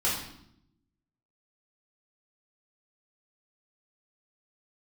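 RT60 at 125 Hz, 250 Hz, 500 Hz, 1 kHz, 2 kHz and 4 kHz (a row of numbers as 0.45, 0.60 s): 1.2, 1.1, 0.80, 0.70, 0.65, 0.65 s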